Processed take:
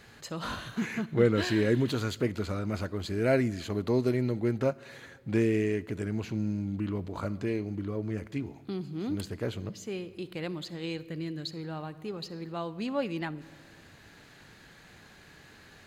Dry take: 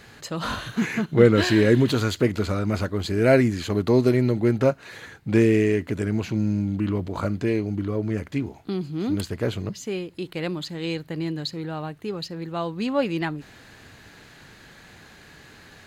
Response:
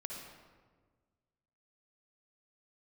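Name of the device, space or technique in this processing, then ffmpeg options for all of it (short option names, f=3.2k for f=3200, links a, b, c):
ducked reverb: -filter_complex "[0:a]asplit=3[a][b][c];[1:a]atrim=start_sample=2205[d];[b][d]afir=irnorm=-1:irlink=0[e];[c]apad=whole_len=699465[f];[e][f]sidechaincompress=threshold=-29dB:ratio=8:attack=16:release=1310,volume=-5dB[g];[a][g]amix=inputs=2:normalize=0,asettb=1/sr,asplit=3[h][i][j];[h]atrim=end=11.054[k];[i]atrim=start=11.05:end=11.51,asetpts=PTS-STARTPTS,afade=t=in:d=0.004:c=qsin,afade=t=out:st=0.456:d=0.004:c=qsin,equalizer=f=850:w=3.5:g=-12[l];[j]atrim=start=11.506[m];[k][l]acrossfade=d=0.004:c1=hsin:c2=qsin[n];[n][m]acrossfade=d=0.004:c1=qsin:c2=hsin,volume=-8.5dB"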